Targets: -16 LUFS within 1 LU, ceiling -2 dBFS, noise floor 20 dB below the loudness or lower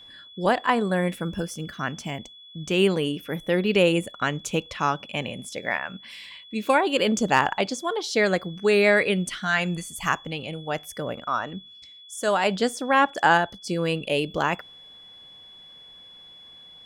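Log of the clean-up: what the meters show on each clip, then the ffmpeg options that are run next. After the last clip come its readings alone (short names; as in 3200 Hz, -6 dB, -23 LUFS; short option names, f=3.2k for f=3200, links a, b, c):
steady tone 3400 Hz; tone level -45 dBFS; loudness -24.5 LUFS; peak -5.5 dBFS; loudness target -16.0 LUFS
-> -af "bandreject=f=3.4k:w=30"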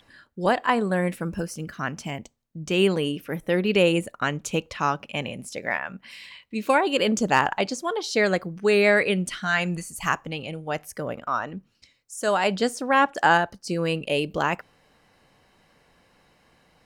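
steady tone none; loudness -24.5 LUFS; peak -5.5 dBFS; loudness target -16.0 LUFS
-> -af "volume=8.5dB,alimiter=limit=-2dB:level=0:latency=1"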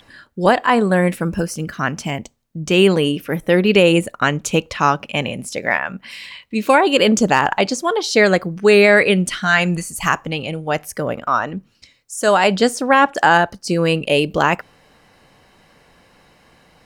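loudness -16.5 LUFS; peak -2.0 dBFS; noise floor -55 dBFS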